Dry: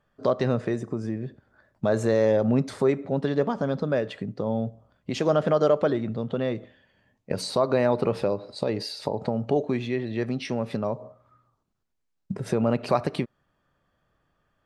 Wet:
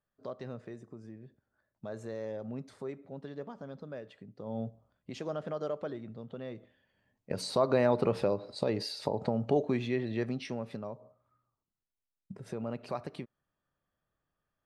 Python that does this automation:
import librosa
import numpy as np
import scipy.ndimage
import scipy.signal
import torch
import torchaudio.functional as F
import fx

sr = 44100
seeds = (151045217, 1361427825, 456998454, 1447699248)

y = fx.gain(x, sr, db=fx.line((4.34, -18.0), (4.61, -8.0), (5.33, -15.0), (6.42, -15.0), (7.64, -4.0), (10.12, -4.0), (10.97, -14.0)))